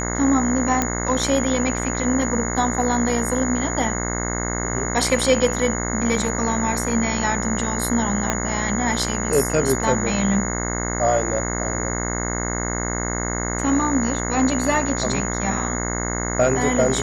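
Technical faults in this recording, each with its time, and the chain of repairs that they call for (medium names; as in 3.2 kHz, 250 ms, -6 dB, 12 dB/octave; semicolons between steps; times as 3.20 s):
buzz 60 Hz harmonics 36 -26 dBFS
whine 6.8 kHz -28 dBFS
0.82 s: pop -5 dBFS
8.30 s: pop -6 dBFS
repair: de-click; band-stop 6.8 kHz, Q 30; de-hum 60 Hz, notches 36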